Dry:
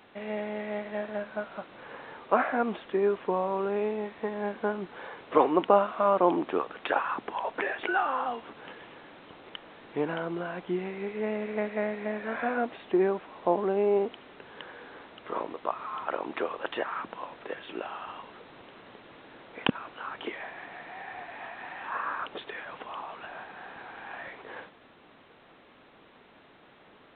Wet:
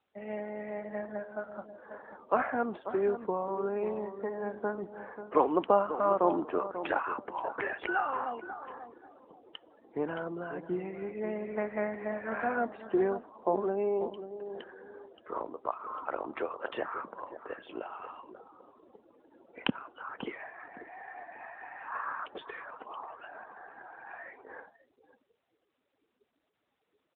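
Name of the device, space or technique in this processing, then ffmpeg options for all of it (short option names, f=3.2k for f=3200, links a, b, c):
mobile call with aggressive noise cancelling: -filter_complex "[0:a]asplit=3[a][b][c];[a]afade=t=out:st=11.55:d=0.02[d];[b]equalizer=f=1.1k:t=o:w=1.2:g=4,afade=t=in:st=11.55:d=0.02,afade=t=out:st=12.86:d=0.02[e];[c]afade=t=in:st=12.86:d=0.02[f];[d][e][f]amix=inputs=3:normalize=0,highpass=140,asplit=2[g][h];[h]adelay=539,lowpass=f=1.6k:p=1,volume=-10.5dB,asplit=2[i][j];[j]adelay=539,lowpass=f=1.6k:p=1,volume=0.24,asplit=2[k][l];[l]adelay=539,lowpass=f=1.6k:p=1,volume=0.24[m];[g][i][k][m]amix=inputs=4:normalize=0,afftdn=nr=28:nf=-43,volume=-3dB" -ar 8000 -c:a libopencore_amrnb -b:a 12200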